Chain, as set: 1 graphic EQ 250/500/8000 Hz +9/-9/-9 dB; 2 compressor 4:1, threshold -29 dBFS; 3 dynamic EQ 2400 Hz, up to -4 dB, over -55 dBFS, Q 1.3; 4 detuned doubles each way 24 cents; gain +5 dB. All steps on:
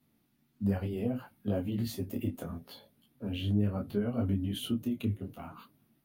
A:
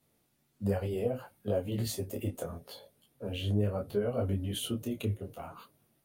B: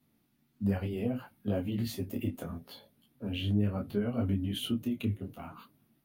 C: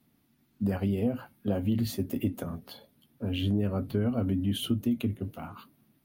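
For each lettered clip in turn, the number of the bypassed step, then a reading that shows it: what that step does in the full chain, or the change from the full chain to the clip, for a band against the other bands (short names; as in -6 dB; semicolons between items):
1, 250 Hz band -6.5 dB; 3, 2 kHz band +2.5 dB; 4, crest factor change -2.0 dB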